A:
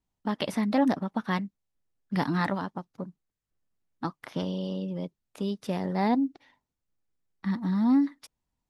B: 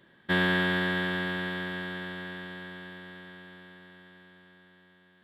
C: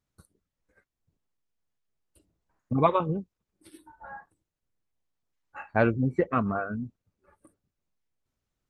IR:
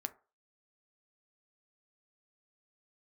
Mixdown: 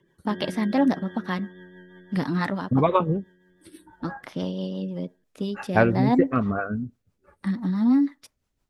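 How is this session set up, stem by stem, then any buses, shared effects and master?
+0.5 dB, 0.00 s, send -5 dB, none
-1.5 dB, 0.00 s, send -16 dB, spectral gate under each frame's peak -15 dB strong; rippled EQ curve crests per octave 0.73, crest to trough 9 dB; auto duck -11 dB, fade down 0.25 s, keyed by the first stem
+1.0 dB, 0.00 s, send -14.5 dB, level rider gain up to 4 dB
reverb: on, RT60 0.35 s, pre-delay 4 ms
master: rotary cabinet horn 6 Hz

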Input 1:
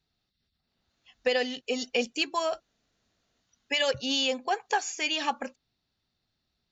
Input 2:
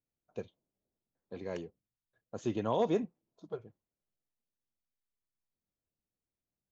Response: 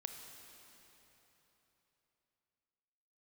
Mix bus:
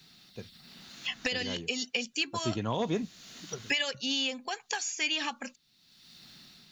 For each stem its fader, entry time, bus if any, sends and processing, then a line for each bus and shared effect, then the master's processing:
-5.0 dB, 0.00 s, no send, resonant low shelf 120 Hz -11.5 dB, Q 1.5; three bands compressed up and down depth 100%
+3.0 dB, 0.00 s, no send, none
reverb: none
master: peaking EQ 530 Hz -11.5 dB 2.4 oct; level rider gain up to 5 dB

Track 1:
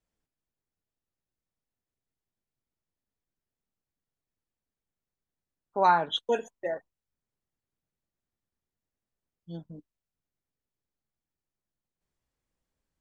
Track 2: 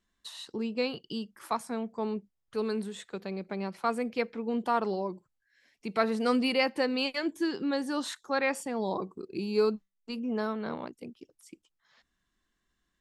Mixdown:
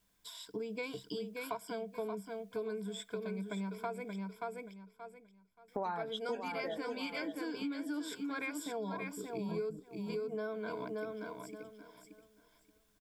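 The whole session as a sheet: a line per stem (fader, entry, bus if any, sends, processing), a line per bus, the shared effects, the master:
-1.5 dB, 0.00 s, no send, echo send -11.5 dB, bass shelf 480 Hz +7.5 dB
-5.5 dB, 0.00 s, muted 4.16–5.68 s, no send, echo send -6.5 dB, rippled EQ curve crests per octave 1.7, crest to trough 18 dB; word length cut 12-bit, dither triangular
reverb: none
echo: feedback delay 578 ms, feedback 23%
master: compression 6:1, threshold -36 dBFS, peak gain reduction 18.5 dB

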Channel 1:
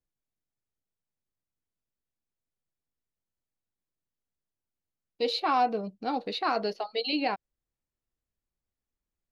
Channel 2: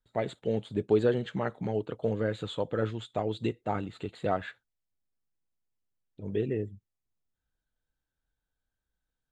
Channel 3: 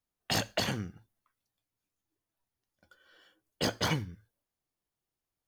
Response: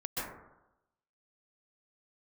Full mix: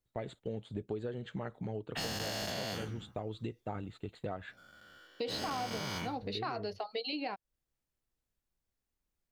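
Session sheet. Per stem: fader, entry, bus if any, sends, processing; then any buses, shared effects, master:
+1.5 dB, 0.00 s, no send, none
-5.5 dB, 0.00 s, no send, gate -45 dBFS, range -14 dB; bass shelf 79 Hz +11.5 dB
-5.0 dB, 1.90 s, no send, every event in the spectrogram widened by 480 ms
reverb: none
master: compression 6:1, threshold -35 dBFS, peak gain reduction 16 dB

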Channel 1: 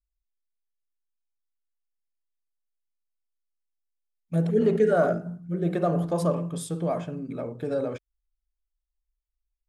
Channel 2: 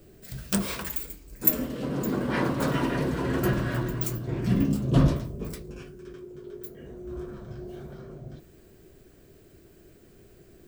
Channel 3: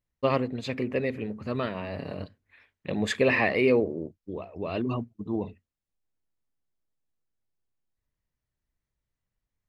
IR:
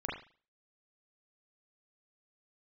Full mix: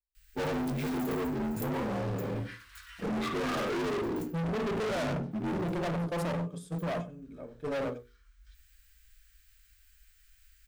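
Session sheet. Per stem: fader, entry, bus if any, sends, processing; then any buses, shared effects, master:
-1.0 dB, 0.00 s, no send, echo send -21.5 dB, gate -29 dBFS, range -16 dB
-4.5 dB, 0.15 s, no send, no echo send, compression 12:1, threshold -33 dBFS, peak gain reduction 19.5 dB; inverse Chebyshev band-stop 130–700 Hz, stop band 50 dB; auto duck -10 dB, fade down 0.20 s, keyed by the first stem
-9.0 dB, 0.15 s, send -8 dB, no echo send, frequency axis rescaled in octaves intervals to 80%; peaking EQ 1.9 kHz -8.5 dB 1.7 oct; waveshaping leveller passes 3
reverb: on, pre-delay 36 ms
echo: delay 97 ms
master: hum notches 60/120/180/240/300/360/420/480 Hz; harmonic-percussive split harmonic +5 dB; overload inside the chain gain 30.5 dB

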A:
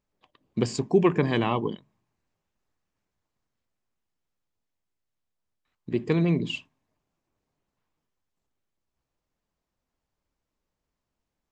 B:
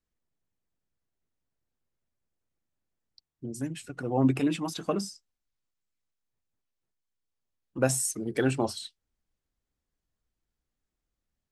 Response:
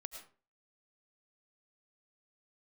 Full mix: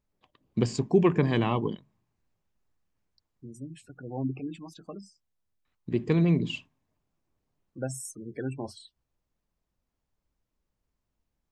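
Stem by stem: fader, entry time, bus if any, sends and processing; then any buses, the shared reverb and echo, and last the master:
-3.0 dB, 0.00 s, no send, none
-10.0 dB, 0.00 s, no send, spectral gate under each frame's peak -20 dB strong; auto duck -10 dB, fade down 1.75 s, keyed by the first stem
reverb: none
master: bass shelf 190 Hz +7 dB

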